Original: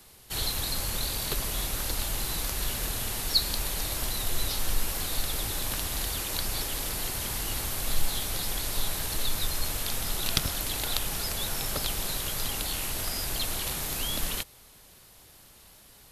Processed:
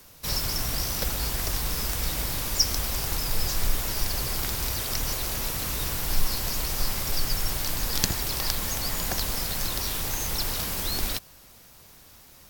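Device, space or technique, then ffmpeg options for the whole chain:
nightcore: -af "asetrate=56889,aresample=44100,volume=2.5dB"

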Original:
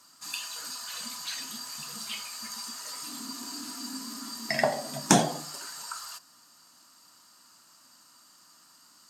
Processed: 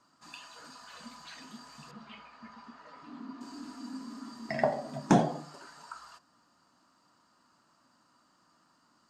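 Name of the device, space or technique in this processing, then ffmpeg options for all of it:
through cloth: -filter_complex "[0:a]lowpass=7.8k,highshelf=f=2.2k:g=-18,asettb=1/sr,asplit=3[a][b][c];[a]atrim=end=1.914[d];[b]atrim=start=1.91:end=3.41,asetpts=PTS-STARTPTS,afade=t=in:d=0.004:c=qsin,afade=t=out:st=1.496:d=0.004:c=qsin,lowpass=2.7k[e];[c]atrim=start=3.406[f];[d][e]acrossfade=d=0.004:c1=hsin:c2=qsin[g];[g][f]acrossfade=d=0.004:c1=qsin:c2=hsin"

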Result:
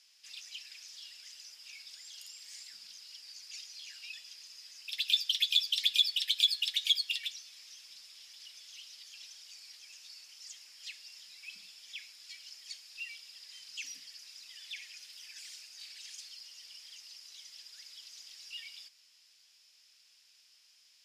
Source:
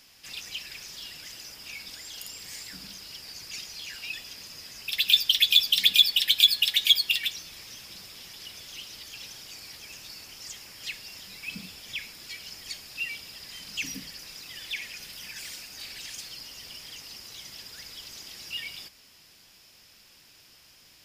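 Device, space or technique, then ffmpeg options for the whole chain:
piezo pickup straight into a mixer: -af "lowpass=5.7k,aderivative,volume=-1.5dB"

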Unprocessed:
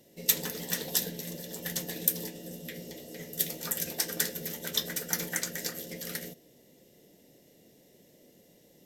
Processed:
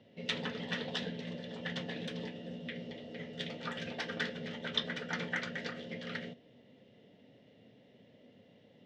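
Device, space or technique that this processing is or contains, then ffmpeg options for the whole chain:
guitar cabinet: -af "highpass=89,equalizer=f=110:t=q:w=4:g=9,equalizer=f=160:t=q:w=4:g=-3,equalizer=f=240:t=q:w=4:g=5,equalizer=f=340:t=q:w=4:g=-9,equalizer=f=1.3k:t=q:w=4:g=4,equalizer=f=3.1k:t=q:w=4:g=4,lowpass=f=3.4k:w=0.5412,lowpass=f=3.4k:w=1.3066"

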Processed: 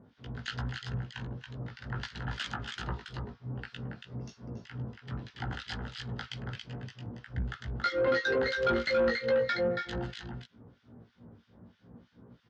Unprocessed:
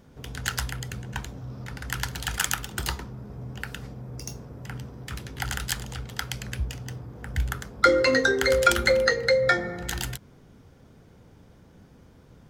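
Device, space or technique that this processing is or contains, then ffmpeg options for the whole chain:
guitar amplifier with harmonic tremolo: -filter_complex "[0:a]asplit=2[a][b];[b]adelay=17,volume=-2.5dB[c];[a][c]amix=inputs=2:normalize=0,asettb=1/sr,asplit=3[d][e][f];[d]atrim=end=6.554[g];[e]atrim=start=6.55:end=7.05,asetpts=PTS-STARTPTS,afade=t=in:d=0.004:c=qsin,afade=t=out:st=0.496:d=0.004:c=qsin,highpass=f=110:w=0.5412,highpass=f=110:w=1.3066[h];[f]atrim=start=7.046[i];[g][h]acrossfade=d=0.004:c1=hsin:c2=qsin[j];[j][i]acrossfade=d=0.004:c1=qsin:c2=hsin,aecho=1:1:279:0.531,acrossover=split=1500[k][l];[k]aeval=exprs='val(0)*(1-1/2+1/2*cos(2*PI*3.1*n/s))':c=same[m];[l]aeval=exprs='val(0)*(1-1/2-1/2*cos(2*PI*3.1*n/s))':c=same[n];[m][n]amix=inputs=2:normalize=0,asoftclip=type=tanh:threshold=-19dB,highpass=81,equalizer=f=97:t=q:w=4:g=5,equalizer=f=230:t=q:w=4:g=8,equalizer=f=2.3k:t=q:w=4:g=-5,lowpass=f=4.4k:w=0.5412,lowpass=f=4.4k:w=1.3066,volume=-3dB"

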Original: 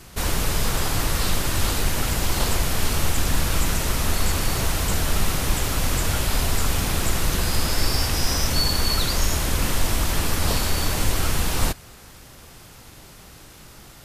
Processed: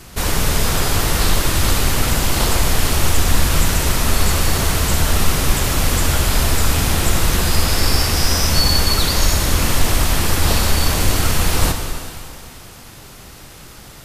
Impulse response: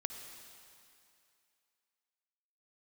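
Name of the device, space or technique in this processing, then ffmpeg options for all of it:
stairwell: -filter_complex "[1:a]atrim=start_sample=2205[a];[0:a][a]afir=irnorm=-1:irlink=0,volume=6.5dB"

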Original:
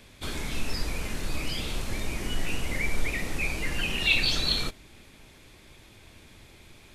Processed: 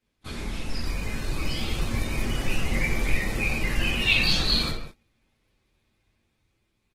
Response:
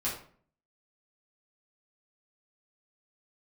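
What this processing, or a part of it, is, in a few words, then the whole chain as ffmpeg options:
speakerphone in a meeting room: -filter_complex "[1:a]atrim=start_sample=2205[a];[0:a][a]afir=irnorm=-1:irlink=0,asplit=2[b][c];[c]adelay=150,highpass=300,lowpass=3.4k,asoftclip=type=hard:threshold=-15.5dB,volume=-15dB[d];[b][d]amix=inputs=2:normalize=0,dynaudnorm=f=430:g=7:m=5dB,agate=range=-22dB:threshold=-32dB:ratio=16:detection=peak,volume=-6dB" -ar 48000 -c:a libopus -b:a 16k

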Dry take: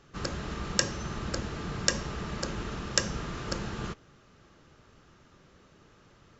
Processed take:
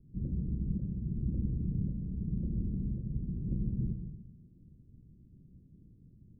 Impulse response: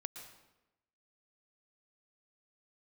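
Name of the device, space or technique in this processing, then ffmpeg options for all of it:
club heard from the street: -filter_complex "[0:a]alimiter=limit=-12dB:level=0:latency=1:release=456,lowpass=f=240:w=0.5412,lowpass=f=240:w=1.3066[a];[1:a]atrim=start_sample=2205[b];[a][b]afir=irnorm=-1:irlink=0,volume=7.5dB"

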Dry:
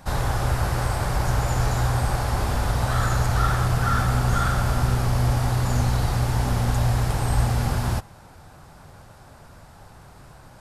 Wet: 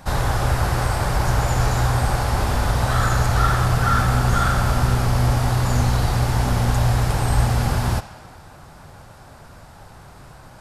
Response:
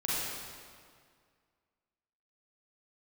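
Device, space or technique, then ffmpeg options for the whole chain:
filtered reverb send: -filter_complex "[0:a]asplit=2[a][b];[b]highpass=f=600:p=1,lowpass=7.6k[c];[1:a]atrim=start_sample=2205[d];[c][d]afir=irnorm=-1:irlink=0,volume=-17.5dB[e];[a][e]amix=inputs=2:normalize=0,volume=3dB"

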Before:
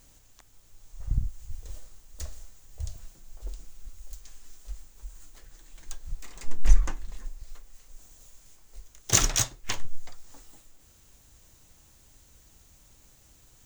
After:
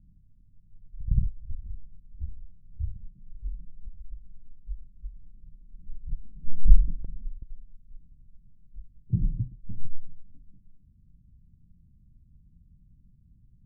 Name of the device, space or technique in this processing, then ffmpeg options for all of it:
the neighbour's flat through the wall: -filter_complex "[0:a]lowpass=f=200:w=0.5412,lowpass=f=200:w=1.3066,equalizer=f=180:t=o:w=0.86:g=7,asettb=1/sr,asplit=3[a][b][c];[a]atrim=end=7.044[d];[b]atrim=start=7.04:end=7.54,asetpts=PTS-STARTPTS,afade=t=in:d=0.004:c=qsin,afade=t=out:st=0.496:d=0.004:c=qsin,agate=range=-9dB:threshold=-38dB:ratio=16:detection=peak[e];[c]atrim=start=7.536[f];[d][e]acrossfade=d=0.004:c1=hsin:c2=qsin[g];[g][f]acrossfade=d=0.004:c1=qsin:c2=hsin,equalizer=f=660:t=o:w=0.22:g=-7,volume=2.5dB"

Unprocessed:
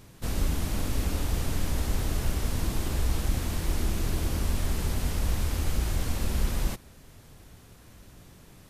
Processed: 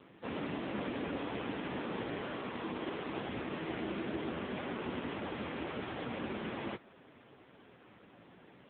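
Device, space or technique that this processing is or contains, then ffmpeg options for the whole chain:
telephone: -filter_complex "[0:a]asettb=1/sr,asplit=3[a][b][c];[a]atrim=end=2.194[d];[b]atrim=start=2.19:end=3.06,asetpts=PTS-STARTPTS,afade=t=in:d=0.004:c=qsin,afade=t=out:st=0.866:d=0.004:c=qsin,highpass=f=160:p=1[e];[c]atrim=start=3.056[f];[d][e]acrossfade=d=0.004:c1=hsin:c2=qsin[g];[g][f]acrossfade=d=0.004:c1=qsin:c2=hsin,adynamicequalizer=threshold=0.00178:dfrequency=7600:dqfactor=2.2:tfrequency=7600:tqfactor=2.2:attack=5:release=100:ratio=0.375:range=2:mode=cutabove:tftype=bell,highpass=260,lowpass=3.2k,volume=3.5dB" -ar 8000 -c:a libopencore_amrnb -b:a 5900

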